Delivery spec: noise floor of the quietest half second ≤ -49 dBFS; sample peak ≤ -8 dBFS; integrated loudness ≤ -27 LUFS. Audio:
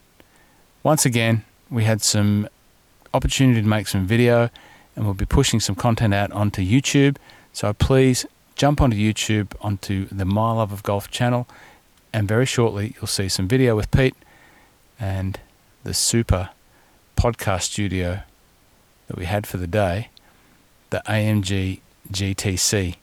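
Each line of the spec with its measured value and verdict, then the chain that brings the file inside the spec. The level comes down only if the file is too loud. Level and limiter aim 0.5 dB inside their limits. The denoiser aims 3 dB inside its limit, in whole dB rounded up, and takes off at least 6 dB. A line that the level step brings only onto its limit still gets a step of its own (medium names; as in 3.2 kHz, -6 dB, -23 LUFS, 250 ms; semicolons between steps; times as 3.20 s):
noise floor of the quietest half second -56 dBFS: pass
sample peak -5.0 dBFS: fail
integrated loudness -21.0 LUFS: fail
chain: trim -6.5 dB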